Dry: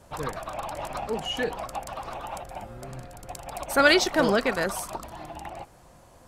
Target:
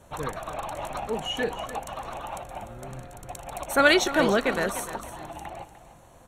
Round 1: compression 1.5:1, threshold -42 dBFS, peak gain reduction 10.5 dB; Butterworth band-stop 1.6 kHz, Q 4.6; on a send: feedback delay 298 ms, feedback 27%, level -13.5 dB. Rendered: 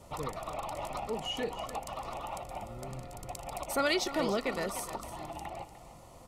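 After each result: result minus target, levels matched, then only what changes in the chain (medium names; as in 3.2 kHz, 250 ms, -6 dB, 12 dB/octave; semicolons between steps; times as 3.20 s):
compression: peak gain reduction +10.5 dB; 2 kHz band -3.0 dB
remove: compression 1.5:1, threshold -42 dBFS, peak gain reduction 10.5 dB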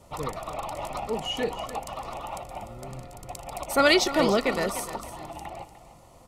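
2 kHz band -3.0 dB
change: Butterworth band-stop 4.9 kHz, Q 4.6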